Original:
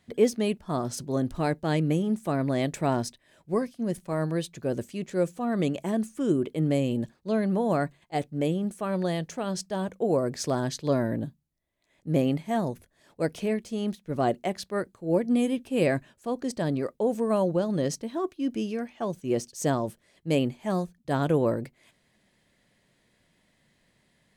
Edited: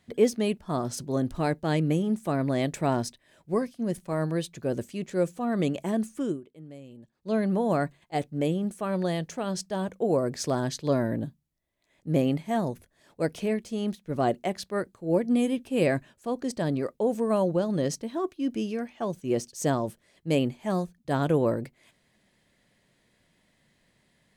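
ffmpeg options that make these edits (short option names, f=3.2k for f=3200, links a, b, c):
-filter_complex "[0:a]asplit=3[a][b][c];[a]atrim=end=6.41,asetpts=PTS-STARTPTS,afade=t=out:st=6.19:d=0.22:silence=0.1[d];[b]atrim=start=6.41:end=7.12,asetpts=PTS-STARTPTS,volume=-20dB[e];[c]atrim=start=7.12,asetpts=PTS-STARTPTS,afade=t=in:d=0.22:silence=0.1[f];[d][e][f]concat=n=3:v=0:a=1"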